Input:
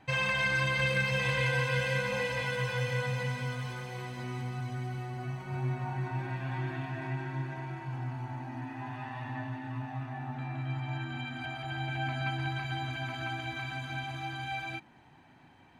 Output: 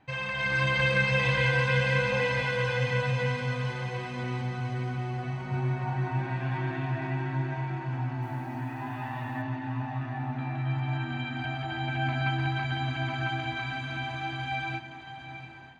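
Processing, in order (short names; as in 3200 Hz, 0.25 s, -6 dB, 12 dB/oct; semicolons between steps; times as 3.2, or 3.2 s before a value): air absorption 82 m; diffused feedback echo 0.747 s, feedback 43%, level -10.5 dB; AGC gain up to 8 dB; 8.22–9.42 requantised 10-bit, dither none; gain -3.5 dB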